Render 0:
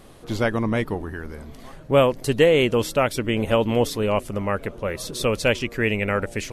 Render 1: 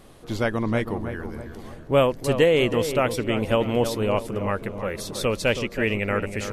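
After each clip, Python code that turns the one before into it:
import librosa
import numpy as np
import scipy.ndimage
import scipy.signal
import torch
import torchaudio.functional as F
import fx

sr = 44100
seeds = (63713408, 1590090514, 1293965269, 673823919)

y = fx.echo_filtered(x, sr, ms=322, feedback_pct=47, hz=1700.0, wet_db=-8.5)
y = y * librosa.db_to_amplitude(-2.0)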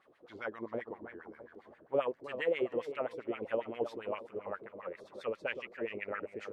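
y = fx.filter_lfo_bandpass(x, sr, shape='sine', hz=7.5, low_hz=360.0, high_hz=2100.0, q=2.7)
y = y * librosa.db_to_amplitude(-7.0)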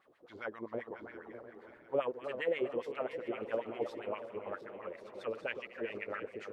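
y = fx.reverse_delay_fb(x, sr, ms=355, feedback_pct=65, wet_db=-11.5)
y = y * librosa.db_to_amplitude(-1.5)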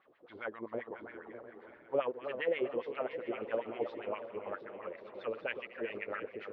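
y = scipy.signal.sosfilt(scipy.signal.butter(4, 3700.0, 'lowpass', fs=sr, output='sos'), x)
y = fx.low_shelf(y, sr, hz=150.0, db=-5.0)
y = y * librosa.db_to_amplitude(1.0)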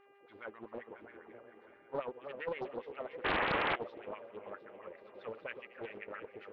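y = fx.spec_paint(x, sr, seeds[0], shape='noise', start_s=3.24, length_s=0.52, low_hz=250.0, high_hz=2200.0, level_db=-26.0)
y = fx.dmg_buzz(y, sr, base_hz=400.0, harmonics=7, level_db=-59.0, tilt_db=-5, odd_only=False)
y = fx.doppler_dist(y, sr, depth_ms=0.64)
y = y * librosa.db_to_amplitude(-6.0)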